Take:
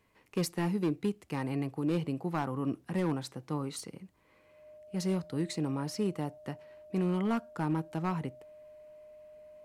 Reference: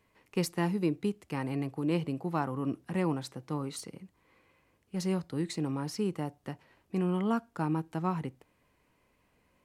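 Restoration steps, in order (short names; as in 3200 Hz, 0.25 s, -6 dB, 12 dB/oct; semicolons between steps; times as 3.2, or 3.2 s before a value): clip repair -23.5 dBFS; notch 610 Hz, Q 30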